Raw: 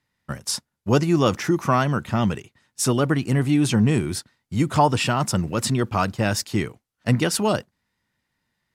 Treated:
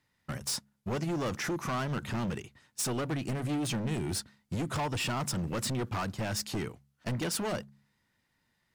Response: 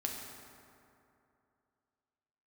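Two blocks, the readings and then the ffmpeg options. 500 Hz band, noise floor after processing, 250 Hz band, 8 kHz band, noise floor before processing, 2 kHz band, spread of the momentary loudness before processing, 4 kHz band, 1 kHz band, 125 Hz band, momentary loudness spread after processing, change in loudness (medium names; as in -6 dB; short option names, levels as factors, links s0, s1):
-12.5 dB, -76 dBFS, -12.5 dB, -7.5 dB, -79 dBFS, -9.5 dB, 11 LU, -8.0 dB, -13.0 dB, -12.0 dB, 7 LU, -11.5 dB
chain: -af "acompressor=threshold=0.0447:ratio=3,volume=28.2,asoftclip=hard,volume=0.0355,bandreject=f=69.56:t=h:w=4,bandreject=f=139.12:t=h:w=4,bandreject=f=208.68:t=h:w=4"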